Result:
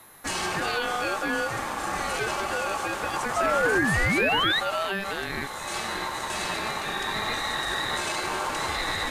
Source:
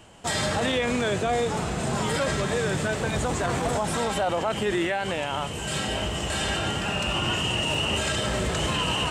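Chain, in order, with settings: painted sound rise, 3.36–4.6, 280–3000 Hz -21 dBFS; whine 12000 Hz -48 dBFS; ring modulator 980 Hz

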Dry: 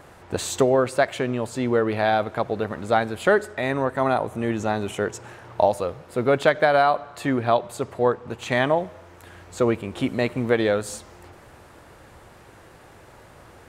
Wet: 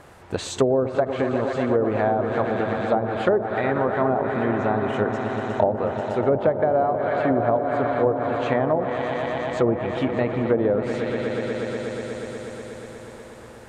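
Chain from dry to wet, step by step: swelling echo 0.121 s, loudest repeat 5, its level -12 dB; treble ducked by the level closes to 650 Hz, closed at -14.5 dBFS

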